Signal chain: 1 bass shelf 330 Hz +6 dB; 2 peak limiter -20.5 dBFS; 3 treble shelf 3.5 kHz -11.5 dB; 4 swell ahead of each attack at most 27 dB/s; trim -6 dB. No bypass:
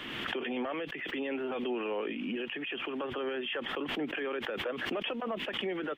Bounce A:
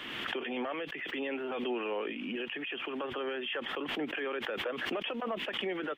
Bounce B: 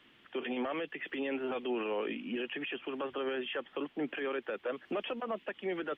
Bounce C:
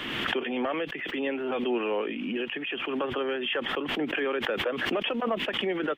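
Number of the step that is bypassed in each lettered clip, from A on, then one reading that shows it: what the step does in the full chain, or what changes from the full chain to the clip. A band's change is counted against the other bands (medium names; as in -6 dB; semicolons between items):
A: 1, 125 Hz band -3.5 dB; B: 4, crest factor change -6.0 dB; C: 2, mean gain reduction 3.0 dB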